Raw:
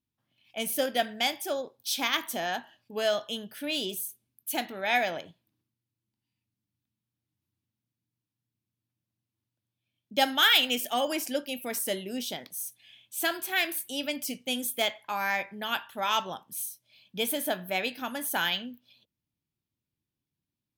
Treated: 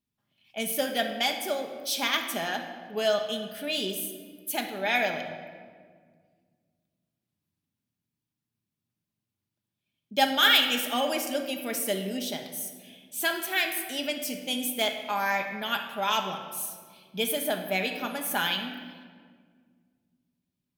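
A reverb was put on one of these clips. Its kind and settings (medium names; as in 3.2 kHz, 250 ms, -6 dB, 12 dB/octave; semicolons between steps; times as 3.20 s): simulated room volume 2600 m³, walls mixed, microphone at 1.3 m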